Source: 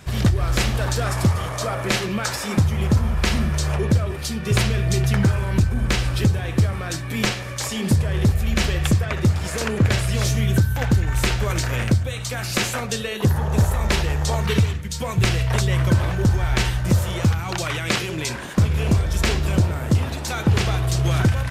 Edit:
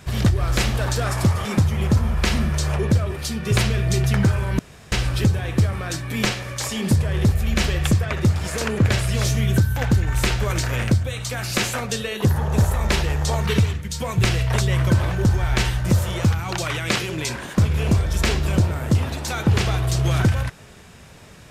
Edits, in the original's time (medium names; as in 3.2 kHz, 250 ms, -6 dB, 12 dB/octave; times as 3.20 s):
1.45–2.45 s: delete
5.59–5.92 s: room tone